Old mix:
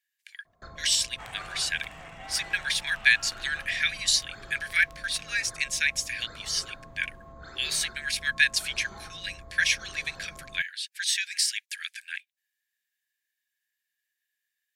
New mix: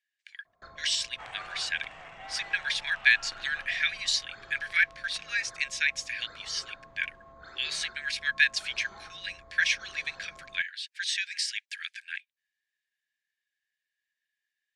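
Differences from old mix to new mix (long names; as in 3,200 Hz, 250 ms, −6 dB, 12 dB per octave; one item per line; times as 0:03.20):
first sound: add low-shelf EQ 400 Hz −11 dB
master: add high-frequency loss of the air 95 metres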